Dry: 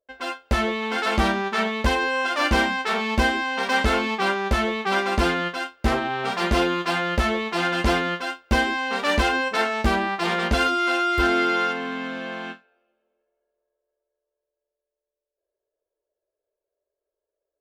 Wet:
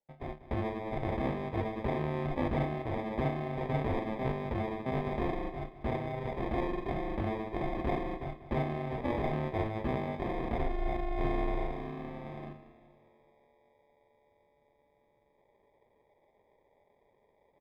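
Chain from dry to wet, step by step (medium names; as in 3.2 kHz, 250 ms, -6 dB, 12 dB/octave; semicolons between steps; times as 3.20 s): bass shelf 190 Hz -10 dB; reverse; upward compressor, threshold -37 dBFS; reverse; sample-and-hold 31×; distance through air 490 m; feedback delay 192 ms, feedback 50%, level -14.5 dB; trim -8 dB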